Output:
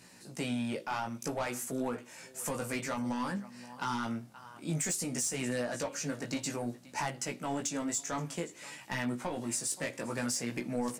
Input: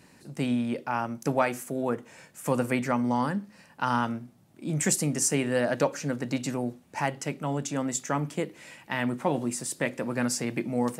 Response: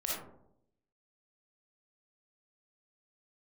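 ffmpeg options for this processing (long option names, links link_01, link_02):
-filter_complex "[0:a]aecho=1:1:524:0.0708,asplit=2[link_01][link_02];[link_02]highpass=frequency=720:poles=1,volume=17dB,asoftclip=type=tanh:threshold=-11dB[link_03];[link_01][link_03]amix=inputs=2:normalize=0,lowpass=frequency=2600:poles=1,volume=-6dB,flanger=delay=16:depth=2.6:speed=0.56,bass=frequency=250:gain=8,treble=frequency=4000:gain=14,alimiter=limit=-17dB:level=0:latency=1:release=355,volume=-7.5dB"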